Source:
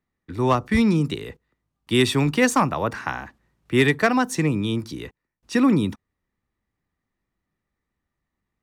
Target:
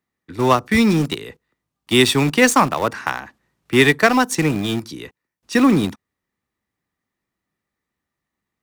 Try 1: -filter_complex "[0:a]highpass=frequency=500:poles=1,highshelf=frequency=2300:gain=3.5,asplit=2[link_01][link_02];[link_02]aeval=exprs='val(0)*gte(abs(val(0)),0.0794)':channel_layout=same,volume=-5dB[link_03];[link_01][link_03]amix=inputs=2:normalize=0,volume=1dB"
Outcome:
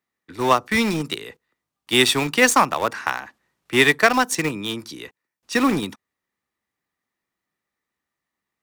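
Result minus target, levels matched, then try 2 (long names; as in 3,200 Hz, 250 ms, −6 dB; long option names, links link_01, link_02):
125 Hz band −6.5 dB
-filter_complex "[0:a]highpass=frequency=150:poles=1,highshelf=frequency=2300:gain=3.5,asplit=2[link_01][link_02];[link_02]aeval=exprs='val(0)*gte(abs(val(0)),0.0794)':channel_layout=same,volume=-5dB[link_03];[link_01][link_03]amix=inputs=2:normalize=0,volume=1dB"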